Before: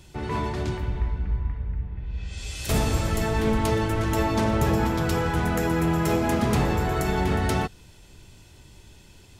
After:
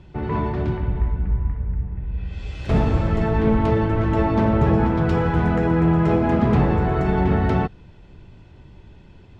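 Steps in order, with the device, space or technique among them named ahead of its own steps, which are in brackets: 5.08–5.56 s: treble shelf 4.5 kHz +6 dB; phone in a pocket (low-pass 3.1 kHz 12 dB/octave; peaking EQ 170 Hz +3 dB 0.71 oct; treble shelf 2 kHz -9.5 dB); trim +4.5 dB

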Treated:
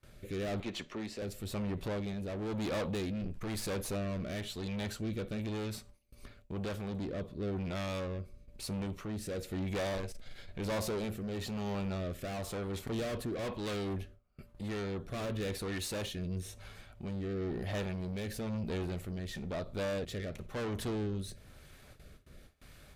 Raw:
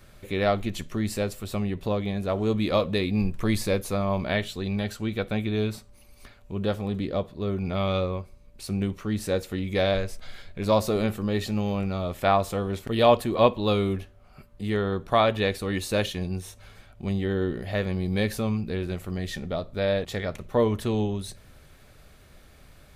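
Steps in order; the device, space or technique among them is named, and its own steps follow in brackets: gate with hold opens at -42 dBFS; 0.60–1.22 s: three-band isolator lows -16 dB, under 240 Hz, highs -21 dB, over 6.1 kHz; overdriven rotary cabinet (valve stage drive 32 dB, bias 0.25; rotary cabinet horn 1 Hz)

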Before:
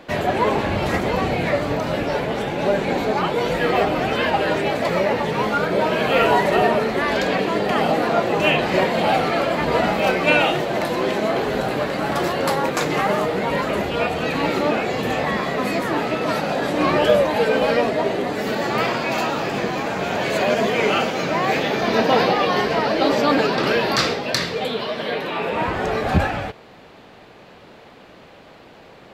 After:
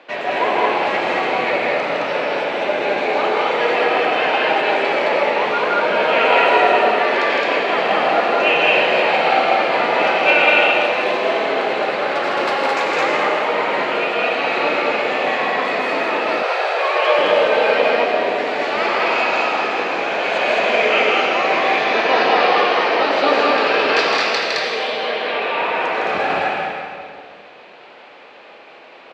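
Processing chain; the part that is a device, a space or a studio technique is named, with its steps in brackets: station announcement (band-pass 460–4300 Hz; peaking EQ 2.5 kHz +5 dB 0.41 oct; loudspeakers at several distances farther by 55 m -4 dB, 74 m -1 dB; reverberation RT60 2.1 s, pre-delay 74 ms, DRR 2.5 dB); 16.43–17.19 s: steep high-pass 370 Hz 72 dB/octave; trim -1 dB

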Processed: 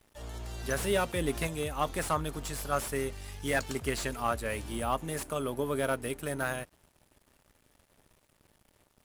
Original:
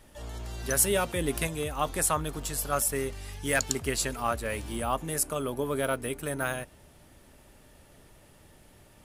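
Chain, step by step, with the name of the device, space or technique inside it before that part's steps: early transistor amplifier (crossover distortion -54 dBFS; slew-rate limiter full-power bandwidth 120 Hz); trim -1 dB

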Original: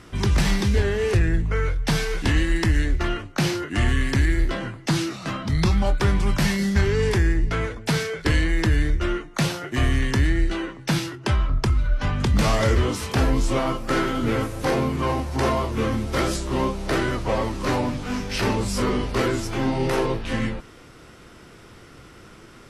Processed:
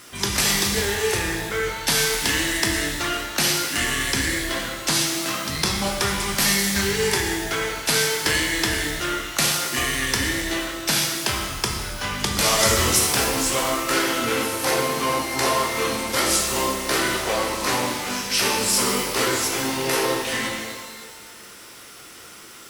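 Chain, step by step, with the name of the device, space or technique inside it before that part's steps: 12.59–12.99 s: tone controls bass +6 dB, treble +6 dB; turntable without a phono preamp (RIAA curve recording; white noise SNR 30 dB); pitch-shifted reverb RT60 1.6 s, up +12 st, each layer -8 dB, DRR 1.5 dB

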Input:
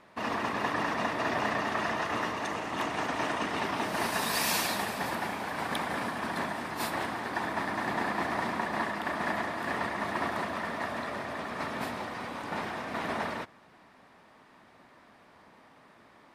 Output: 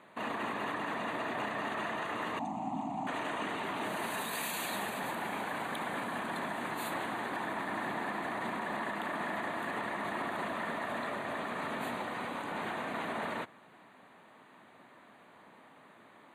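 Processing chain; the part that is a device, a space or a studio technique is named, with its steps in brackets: PA system with an anti-feedback notch (high-pass 130 Hz 12 dB/octave; Butterworth band-stop 5.3 kHz, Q 2.3; peak limiter -27.5 dBFS, peak gain reduction 10 dB); 2.39–3.07 s: FFT filter 100 Hz 0 dB, 260 Hz +8 dB, 460 Hz -25 dB, 770 Hz +7 dB, 1.6 kHz -25 dB, 2.4 kHz -14 dB, 3.4 kHz -17 dB, 7.5 kHz -7 dB, 13 kHz -28 dB

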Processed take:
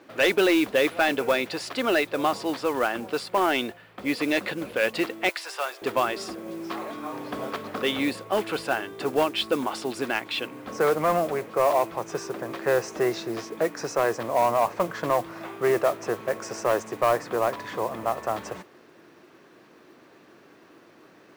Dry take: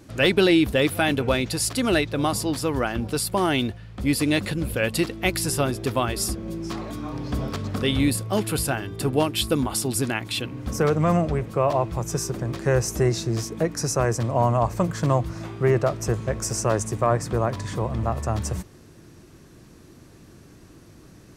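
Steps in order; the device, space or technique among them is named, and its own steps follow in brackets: carbon microphone (band-pass 430–2900 Hz; saturation -16 dBFS, distortion -17 dB; modulation noise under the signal 21 dB); 5.29–5.82 s: Bessel high-pass 870 Hz, order 4; trim +3.5 dB

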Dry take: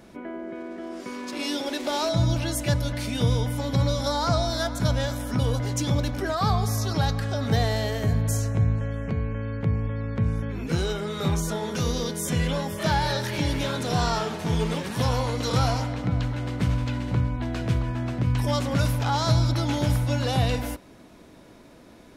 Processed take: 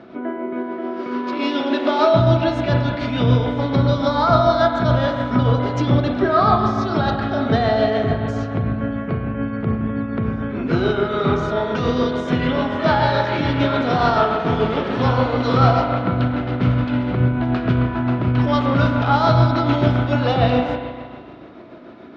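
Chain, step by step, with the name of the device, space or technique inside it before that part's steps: combo amplifier with spring reverb and tremolo (spring tank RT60 1.8 s, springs 32/40 ms, chirp 25 ms, DRR 2 dB; tremolo 6.9 Hz, depth 35%; cabinet simulation 91–4000 Hz, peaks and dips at 260 Hz +6 dB, 370 Hz +7 dB, 670 Hz +7 dB, 1.3 kHz +9 dB); trim +4.5 dB

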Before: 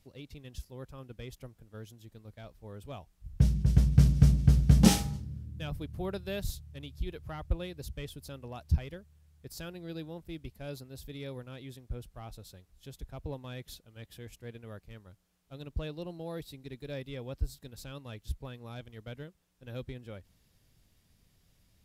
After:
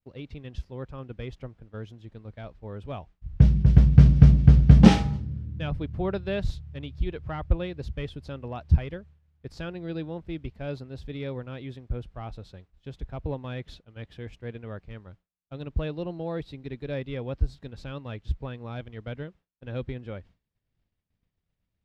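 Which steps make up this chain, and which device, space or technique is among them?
hearing-loss simulation (low-pass 2.8 kHz 12 dB/octave; expander -53 dBFS); trim +7.5 dB

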